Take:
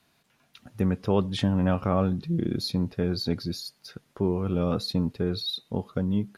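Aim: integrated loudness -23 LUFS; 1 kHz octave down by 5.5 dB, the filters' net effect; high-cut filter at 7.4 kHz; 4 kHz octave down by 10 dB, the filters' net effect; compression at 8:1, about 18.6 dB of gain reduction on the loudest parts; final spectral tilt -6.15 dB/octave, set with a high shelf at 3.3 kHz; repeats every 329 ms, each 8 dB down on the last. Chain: low-pass 7.4 kHz; peaking EQ 1 kHz -6.5 dB; treble shelf 3.3 kHz -5 dB; peaking EQ 4 kHz -7 dB; compression 8:1, threshold -39 dBFS; feedback delay 329 ms, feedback 40%, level -8 dB; trim +21 dB

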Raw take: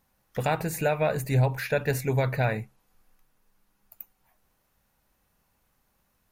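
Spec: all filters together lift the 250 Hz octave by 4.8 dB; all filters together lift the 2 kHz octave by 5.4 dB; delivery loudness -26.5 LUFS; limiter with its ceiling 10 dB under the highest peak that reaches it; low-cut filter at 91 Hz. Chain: high-pass 91 Hz; peaking EQ 250 Hz +7.5 dB; peaking EQ 2 kHz +7 dB; trim +2 dB; peak limiter -16 dBFS

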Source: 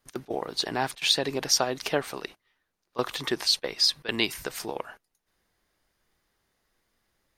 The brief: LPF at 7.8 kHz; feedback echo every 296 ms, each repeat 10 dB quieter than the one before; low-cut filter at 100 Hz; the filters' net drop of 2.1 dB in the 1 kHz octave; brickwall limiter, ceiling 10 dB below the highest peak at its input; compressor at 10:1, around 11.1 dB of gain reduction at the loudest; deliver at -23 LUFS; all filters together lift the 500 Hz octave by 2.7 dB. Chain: high-pass 100 Hz; low-pass 7.8 kHz; peaking EQ 500 Hz +4.5 dB; peaking EQ 1 kHz -5 dB; compression 10:1, threshold -29 dBFS; peak limiter -24 dBFS; feedback delay 296 ms, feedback 32%, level -10 dB; trim +13.5 dB

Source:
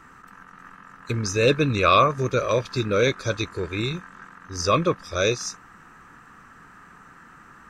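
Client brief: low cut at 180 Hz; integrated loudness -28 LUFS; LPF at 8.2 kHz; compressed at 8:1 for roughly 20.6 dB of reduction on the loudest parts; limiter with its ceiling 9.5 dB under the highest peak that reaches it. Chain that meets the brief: high-pass 180 Hz; low-pass 8.2 kHz; compression 8:1, threshold -35 dBFS; trim +15.5 dB; peak limiter -16 dBFS

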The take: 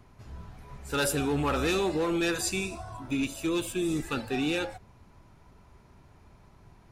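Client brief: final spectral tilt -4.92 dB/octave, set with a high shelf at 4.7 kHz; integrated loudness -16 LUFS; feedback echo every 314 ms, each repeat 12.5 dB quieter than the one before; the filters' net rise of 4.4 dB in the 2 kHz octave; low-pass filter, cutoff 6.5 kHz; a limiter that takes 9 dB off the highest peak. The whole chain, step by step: low-pass 6.5 kHz; peaking EQ 2 kHz +7.5 dB; treble shelf 4.7 kHz -6 dB; peak limiter -25.5 dBFS; feedback delay 314 ms, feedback 24%, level -12.5 dB; trim +17.5 dB

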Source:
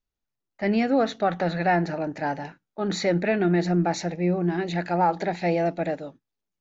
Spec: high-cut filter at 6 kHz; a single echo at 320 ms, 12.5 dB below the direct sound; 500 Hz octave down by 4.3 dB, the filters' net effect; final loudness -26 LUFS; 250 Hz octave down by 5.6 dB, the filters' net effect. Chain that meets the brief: low-pass 6 kHz; peaking EQ 250 Hz -8 dB; peaking EQ 500 Hz -3.5 dB; delay 320 ms -12.5 dB; trim +2.5 dB

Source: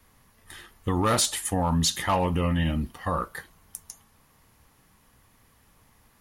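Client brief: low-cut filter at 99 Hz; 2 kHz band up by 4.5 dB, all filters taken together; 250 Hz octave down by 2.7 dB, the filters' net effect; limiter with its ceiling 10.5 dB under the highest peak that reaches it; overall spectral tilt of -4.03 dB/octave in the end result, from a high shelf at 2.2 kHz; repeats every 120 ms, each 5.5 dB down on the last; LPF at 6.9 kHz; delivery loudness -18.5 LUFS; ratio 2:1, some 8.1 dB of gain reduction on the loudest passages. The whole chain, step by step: high-pass 99 Hz; low-pass 6.9 kHz; peaking EQ 250 Hz -3.5 dB; peaking EQ 2 kHz +8.5 dB; treble shelf 2.2 kHz -6.5 dB; compression 2:1, threshold -34 dBFS; peak limiter -29 dBFS; feedback delay 120 ms, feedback 53%, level -5.5 dB; trim +19.5 dB

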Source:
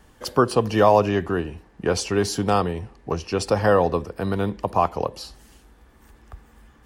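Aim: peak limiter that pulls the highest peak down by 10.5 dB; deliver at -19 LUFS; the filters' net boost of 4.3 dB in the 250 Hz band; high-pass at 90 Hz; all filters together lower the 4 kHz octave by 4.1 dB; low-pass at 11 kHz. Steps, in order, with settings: high-pass 90 Hz; low-pass 11 kHz; peaking EQ 250 Hz +6 dB; peaking EQ 4 kHz -5.5 dB; trim +6.5 dB; peak limiter -6.5 dBFS

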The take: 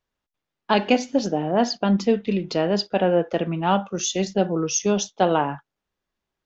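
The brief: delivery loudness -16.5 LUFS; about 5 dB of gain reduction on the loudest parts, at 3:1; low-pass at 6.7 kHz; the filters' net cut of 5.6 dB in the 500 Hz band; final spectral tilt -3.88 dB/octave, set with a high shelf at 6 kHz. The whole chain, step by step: low-pass 6.7 kHz; peaking EQ 500 Hz -7 dB; treble shelf 6 kHz +8 dB; compression 3:1, threshold -23 dBFS; trim +11 dB

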